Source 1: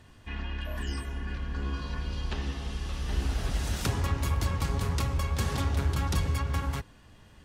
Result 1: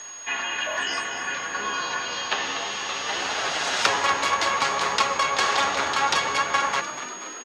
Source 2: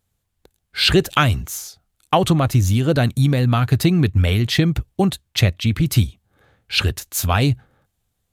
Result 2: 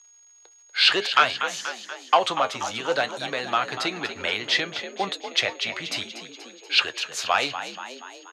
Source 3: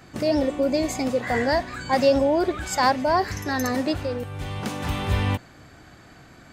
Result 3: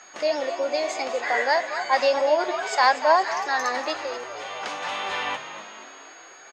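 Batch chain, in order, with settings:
on a send: frequency-shifting echo 240 ms, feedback 56%, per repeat +59 Hz, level -11.5 dB; on the sum: flange 0.6 Hz, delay 4.5 ms, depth 6.8 ms, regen +71%; high-pass 240 Hz 12 dB/octave; whistle 6.6 kHz -50 dBFS; in parallel at -4 dB: wavefolder -13.5 dBFS; on the sum: distance through air 55 m; crackle 250 per s -52 dBFS; three-band isolator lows -22 dB, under 550 Hz, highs -16 dB, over 7.3 kHz; normalise loudness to -24 LUFS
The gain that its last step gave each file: +16.0 dB, +1.5 dB, +4.0 dB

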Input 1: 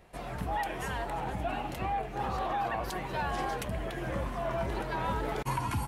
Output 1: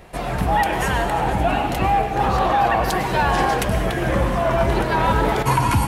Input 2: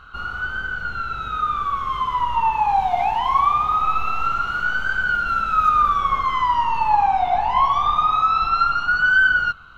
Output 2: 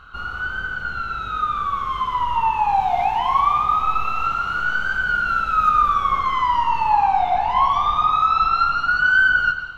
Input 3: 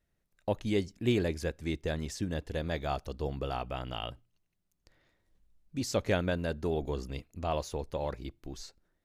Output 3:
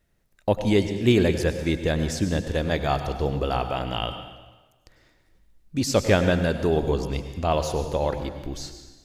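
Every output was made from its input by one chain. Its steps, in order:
plate-style reverb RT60 1.2 s, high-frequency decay 0.95×, pre-delay 85 ms, DRR 8 dB; peak normalisation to -6 dBFS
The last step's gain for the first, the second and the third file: +14.0 dB, -0.5 dB, +9.0 dB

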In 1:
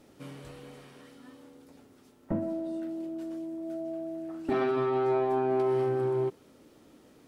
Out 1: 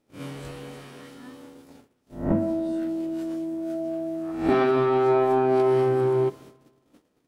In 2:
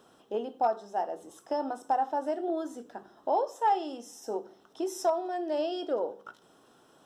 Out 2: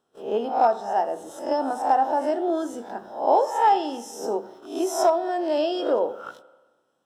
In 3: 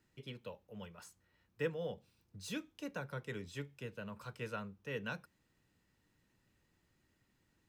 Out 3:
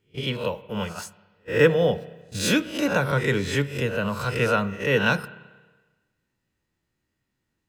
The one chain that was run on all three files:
reverse spectral sustain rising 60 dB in 0.47 s; gate -52 dBFS, range -23 dB; spring tank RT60 1.3 s, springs 30/43 ms, chirp 25 ms, DRR 16.5 dB; normalise loudness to -24 LUFS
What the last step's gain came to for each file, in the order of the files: +6.5 dB, +6.5 dB, +19.0 dB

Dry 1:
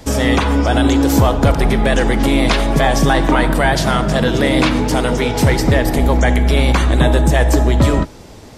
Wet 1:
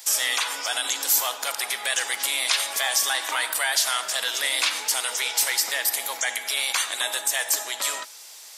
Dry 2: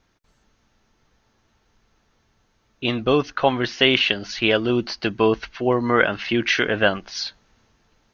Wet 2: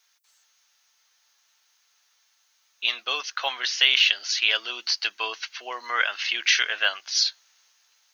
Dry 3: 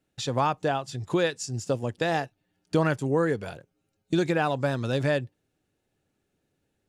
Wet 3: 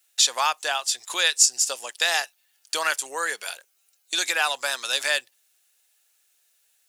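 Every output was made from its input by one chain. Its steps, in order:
high-pass 690 Hz 12 dB/octave; differentiator; in parallel at +1 dB: peak limiter -20 dBFS; on the sum: normalise loudness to -23 LUFS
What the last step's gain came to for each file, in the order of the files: +0.5 dB, +4.0 dB, +13.5 dB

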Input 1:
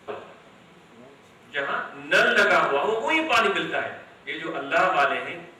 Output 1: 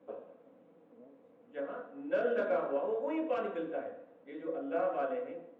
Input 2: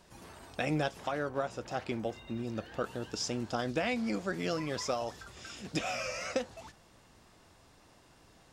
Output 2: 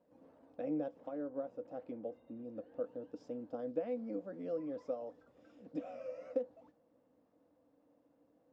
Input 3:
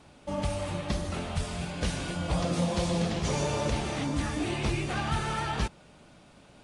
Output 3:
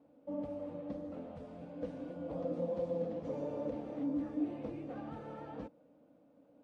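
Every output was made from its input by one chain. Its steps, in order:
two resonant band-passes 380 Hz, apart 0.76 oct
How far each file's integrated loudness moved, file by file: -13.0 LU, -7.0 LU, -9.5 LU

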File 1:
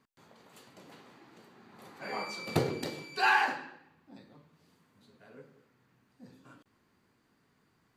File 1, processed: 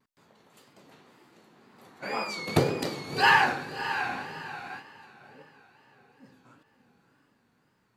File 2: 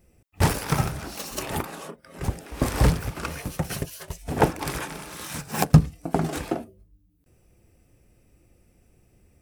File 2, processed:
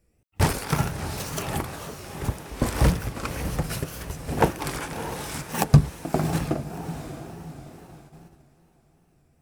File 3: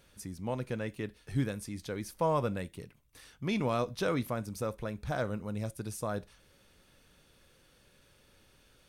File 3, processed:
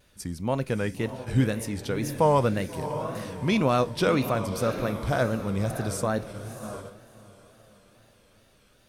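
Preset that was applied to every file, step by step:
echo that smears into a reverb 660 ms, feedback 41%, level -9.5 dB; wow and flutter 110 cents; gate -46 dBFS, range -7 dB; normalise loudness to -27 LUFS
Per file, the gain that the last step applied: +5.5 dB, -0.5 dB, +8.0 dB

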